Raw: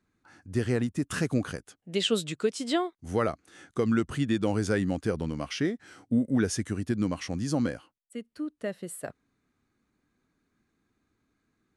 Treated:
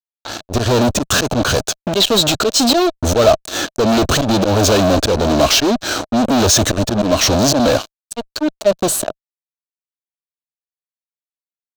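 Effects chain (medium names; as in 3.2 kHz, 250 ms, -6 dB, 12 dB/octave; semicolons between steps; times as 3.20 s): slow attack 284 ms; fuzz box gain 49 dB, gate -54 dBFS; graphic EQ with 31 bands 160 Hz -10 dB, 630 Hz +10 dB, 2 kHz -10 dB, 4 kHz +8 dB, 6.3 kHz +5 dB, 10 kHz -10 dB; trim +1 dB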